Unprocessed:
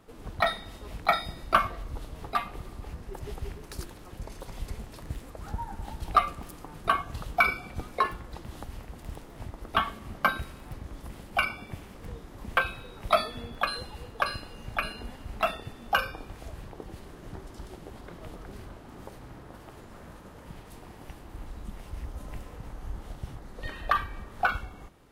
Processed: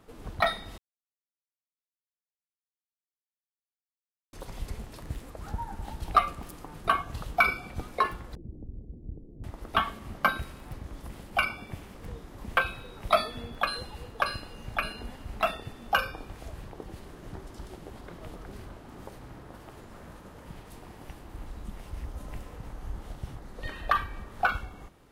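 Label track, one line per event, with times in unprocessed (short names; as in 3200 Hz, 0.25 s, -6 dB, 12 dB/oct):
0.780000	4.330000	mute
8.350000	9.440000	inverse Chebyshev low-pass stop band from 1800 Hz, stop band 70 dB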